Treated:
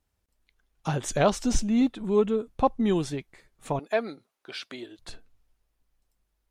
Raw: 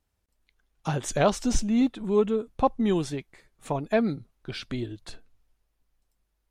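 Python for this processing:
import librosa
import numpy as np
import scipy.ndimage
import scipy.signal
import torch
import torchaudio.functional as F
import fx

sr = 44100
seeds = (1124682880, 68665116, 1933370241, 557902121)

y = fx.highpass(x, sr, hz=460.0, slope=12, at=(3.79, 4.99))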